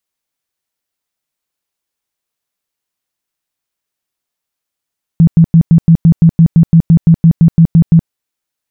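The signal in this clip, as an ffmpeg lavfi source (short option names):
-f lavfi -i "aevalsrc='0.841*sin(2*PI*165*mod(t,0.17))*lt(mod(t,0.17),12/165)':d=2.89:s=44100"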